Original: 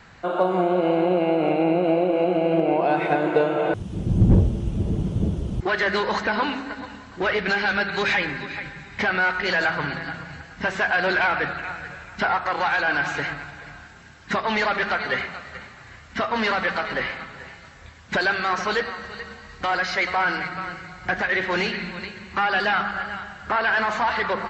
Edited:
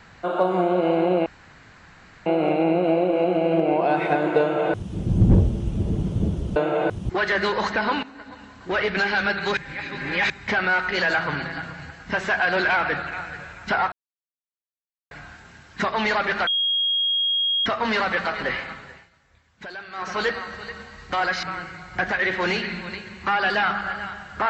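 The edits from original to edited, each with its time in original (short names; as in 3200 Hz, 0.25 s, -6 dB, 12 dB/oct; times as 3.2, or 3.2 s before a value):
1.26 insert room tone 1.00 s
3.4–3.89 copy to 5.56
6.54–7.35 fade in, from -14 dB
8.08–8.81 reverse
12.43–13.62 mute
14.98–16.17 bleep 3270 Hz -19 dBFS
17.27–18.76 dip -15 dB, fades 0.34 s
19.94–20.53 cut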